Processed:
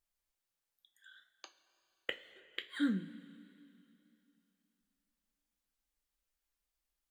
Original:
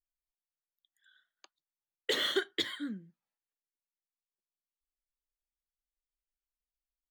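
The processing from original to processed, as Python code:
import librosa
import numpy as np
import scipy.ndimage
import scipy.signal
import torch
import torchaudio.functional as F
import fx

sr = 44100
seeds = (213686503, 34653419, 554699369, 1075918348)

y = fx.gate_flip(x, sr, shuts_db=-25.0, range_db=-41)
y = fx.rev_double_slope(y, sr, seeds[0], early_s=0.23, late_s=2.9, knee_db=-18, drr_db=5.5)
y = fx.wow_flutter(y, sr, seeds[1], rate_hz=2.1, depth_cents=25.0)
y = y * librosa.db_to_amplitude(5.5)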